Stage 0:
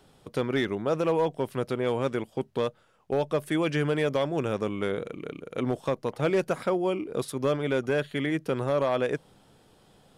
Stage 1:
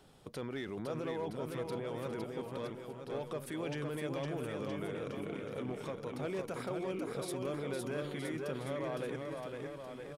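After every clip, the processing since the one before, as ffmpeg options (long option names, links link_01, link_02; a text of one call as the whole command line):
ffmpeg -i in.wav -af "alimiter=level_in=5.5dB:limit=-24dB:level=0:latency=1:release=43,volume=-5.5dB,aecho=1:1:510|969|1382|1754|2089:0.631|0.398|0.251|0.158|0.1,volume=-3dB" out.wav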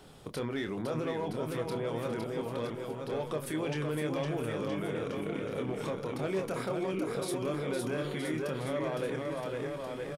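ffmpeg -i in.wav -filter_complex "[0:a]asplit=2[link_01][link_02];[link_02]alimiter=level_in=12.5dB:limit=-24dB:level=0:latency=1:release=98,volume=-12.5dB,volume=2dB[link_03];[link_01][link_03]amix=inputs=2:normalize=0,asplit=2[link_04][link_05];[link_05]adelay=26,volume=-7.5dB[link_06];[link_04][link_06]amix=inputs=2:normalize=0" out.wav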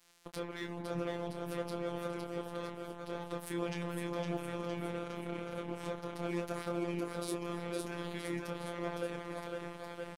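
ffmpeg -i in.wav -af "afftfilt=real='hypot(re,im)*cos(PI*b)':imag='0':win_size=1024:overlap=0.75,aeval=exprs='sgn(val(0))*max(abs(val(0))-0.00398,0)':channel_layout=same" out.wav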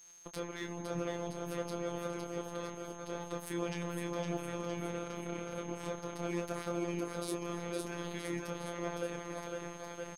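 ffmpeg -i in.wav -af "aeval=exprs='val(0)+0.00178*sin(2*PI*6400*n/s)':channel_layout=same" out.wav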